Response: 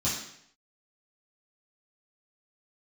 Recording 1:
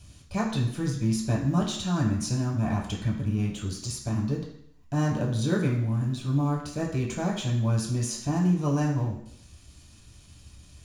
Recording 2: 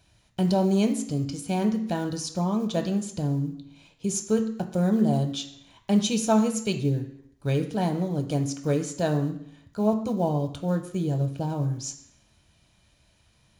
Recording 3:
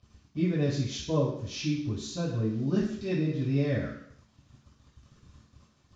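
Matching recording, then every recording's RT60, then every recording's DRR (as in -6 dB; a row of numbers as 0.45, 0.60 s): 3; 0.70, 0.70, 0.70 s; -3.0, 5.0, -11.5 dB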